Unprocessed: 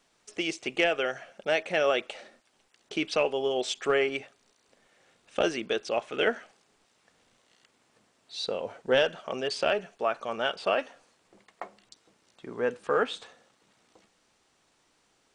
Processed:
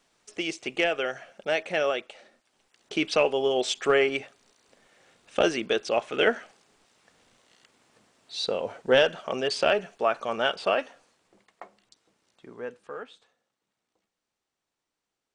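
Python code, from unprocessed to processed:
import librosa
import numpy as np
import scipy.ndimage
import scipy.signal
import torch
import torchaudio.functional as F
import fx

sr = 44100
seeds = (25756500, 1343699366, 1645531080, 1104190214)

y = fx.gain(x, sr, db=fx.line((1.82, 0.0), (2.13, -6.5), (3.02, 3.5), (10.49, 3.5), (11.63, -5.0), (12.46, -5.0), (13.22, -17.0)))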